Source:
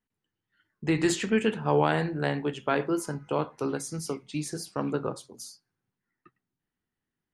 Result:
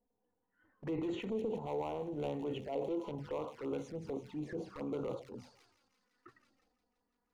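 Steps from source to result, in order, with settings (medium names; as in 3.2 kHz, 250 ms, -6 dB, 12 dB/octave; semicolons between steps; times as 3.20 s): LFO low-pass saw up 0.77 Hz 700–1600 Hz; compression 16:1, threshold -37 dBFS, peak gain reduction 23.5 dB; overload inside the chain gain 35.5 dB; 2.72–3.18 s: high-order bell 3.4 kHz +9.5 dB; feedback echo behind a high-pass 169 ms, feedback 79%, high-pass 4.2 kHz, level -9 dB; transient shaper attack -7 dB, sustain +8 dB; graphic EQ with 31 bands 160 Hz -8 dB, 500 Hz +7 dB, 1.25 kHz -5 dB; touch-sensitive flanger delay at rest 4.2 ms, full sweep at -41.5 dBFS; trim +5.5 dB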